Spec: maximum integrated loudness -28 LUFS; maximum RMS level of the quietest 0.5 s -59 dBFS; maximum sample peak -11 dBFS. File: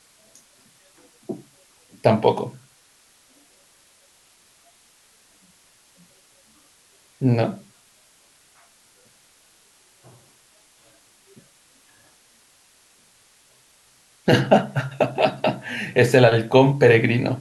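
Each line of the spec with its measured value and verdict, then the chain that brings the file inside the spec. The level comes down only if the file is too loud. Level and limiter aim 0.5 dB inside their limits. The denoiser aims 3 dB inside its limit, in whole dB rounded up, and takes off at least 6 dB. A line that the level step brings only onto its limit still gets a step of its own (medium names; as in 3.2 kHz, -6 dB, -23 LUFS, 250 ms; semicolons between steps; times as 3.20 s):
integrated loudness -19.0 LUFS: fail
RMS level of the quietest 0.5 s -57 dBFS: fail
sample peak -2.5 dBFS: fail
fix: trim -9.5 dB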